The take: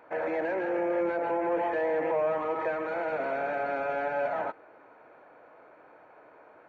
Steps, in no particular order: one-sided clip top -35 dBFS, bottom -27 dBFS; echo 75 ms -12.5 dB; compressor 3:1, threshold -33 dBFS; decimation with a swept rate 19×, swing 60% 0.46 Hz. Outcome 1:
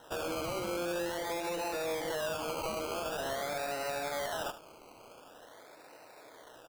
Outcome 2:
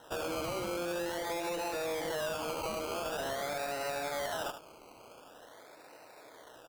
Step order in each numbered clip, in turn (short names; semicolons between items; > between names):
compressor > one-sided clip > decimation with a swept rate > echo; decimation with a swept rate > echo > compressor > one-sided clip